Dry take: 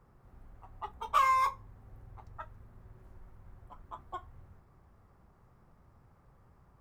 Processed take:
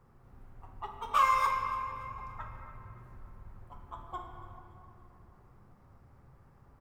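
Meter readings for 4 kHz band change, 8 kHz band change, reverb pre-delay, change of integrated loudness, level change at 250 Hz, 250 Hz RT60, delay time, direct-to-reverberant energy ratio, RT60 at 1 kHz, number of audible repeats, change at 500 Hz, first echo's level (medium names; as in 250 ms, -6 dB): +1.5 dB, +1.0 dB, 7 ms, -1.0 dB, +3.5 dB, 4.8 s, 285 ms, 1.5 dB, 2.7 s, 1, +2.0 dB, -16.5 dB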